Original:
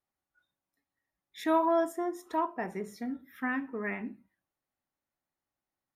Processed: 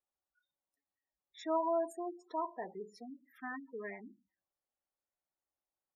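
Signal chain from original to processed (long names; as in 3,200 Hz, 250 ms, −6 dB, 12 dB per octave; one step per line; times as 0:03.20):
gate on every frequency bin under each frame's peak −15 dB strong
graphic EQ with 10 bands 125 Hz −9 dB, 250 Hz −6 dB, 500 Hz +4 dB, 2,000 Hz −4 dB, 8,000 Hz +7 dB
level −6.5 dB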